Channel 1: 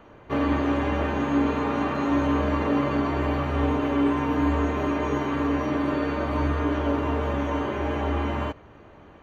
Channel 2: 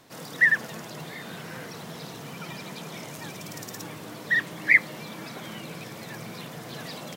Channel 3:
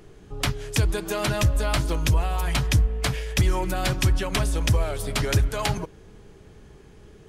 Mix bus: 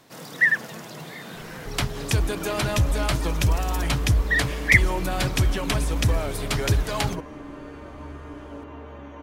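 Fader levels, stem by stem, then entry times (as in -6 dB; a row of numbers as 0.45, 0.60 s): -14.5, +0.5, -0.5 dB; 1.65, 0.00, 1.35 s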